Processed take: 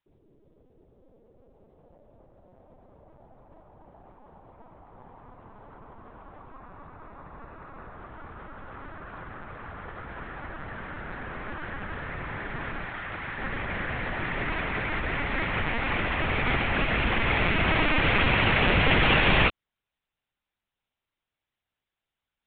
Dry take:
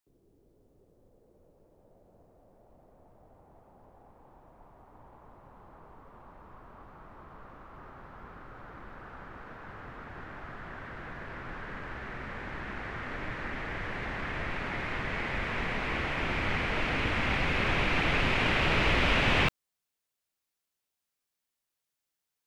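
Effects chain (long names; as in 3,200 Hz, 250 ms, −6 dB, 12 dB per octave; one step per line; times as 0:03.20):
0:12.85–0:13.39: low-shelf EQ 410 Hz −10 dB
linear-prediction vocoder at 8 kHz pitch kept
0:06.55–0:07.94: notch filter 3,100 Hz, Q 8.2
level +4.5 dB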